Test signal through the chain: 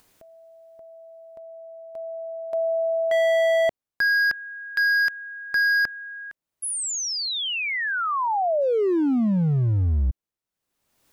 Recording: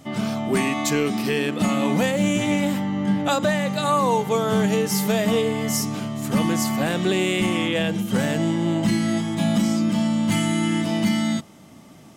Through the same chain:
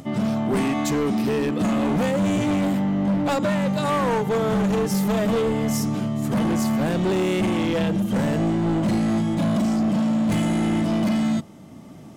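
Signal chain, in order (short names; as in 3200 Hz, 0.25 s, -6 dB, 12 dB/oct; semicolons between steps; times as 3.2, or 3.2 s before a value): tilt shelf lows +4.5 dB, about 940 Hz; upward compressor, threshold -38 dBFS; hard clip -18.5 dBFS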